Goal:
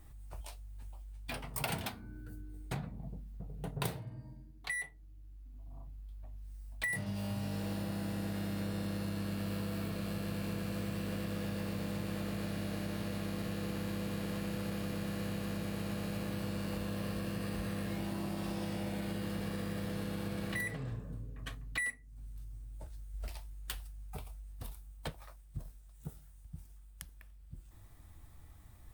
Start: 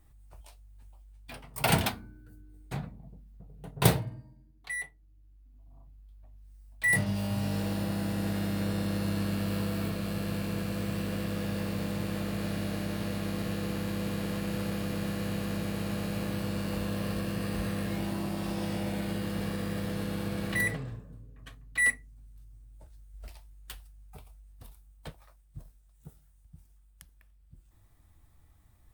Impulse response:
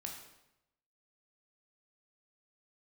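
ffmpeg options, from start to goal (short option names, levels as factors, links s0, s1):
-af "acompressor=threshold=0.00891:ratio=6,volume=1.88"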